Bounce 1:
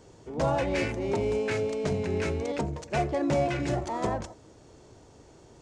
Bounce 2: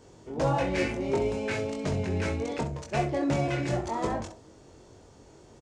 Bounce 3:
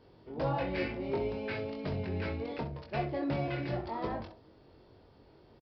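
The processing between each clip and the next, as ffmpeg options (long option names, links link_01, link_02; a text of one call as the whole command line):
ffmpeg -i in.wav -af "aecho=1:1:22|65:0.631|0.299,volume=-1.5dB" out.wav
ffmpeg -i in.wav -af "aresample=11025,aresample=44100,volume=-6dB" out.wav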